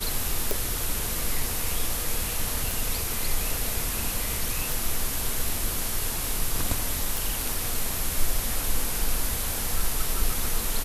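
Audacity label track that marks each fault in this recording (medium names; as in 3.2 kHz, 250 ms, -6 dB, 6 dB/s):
0.510000	0.510000	pop
2.710000	2.710000	pop
4.720000	4.720000	pop
7.170000	7.170000	pop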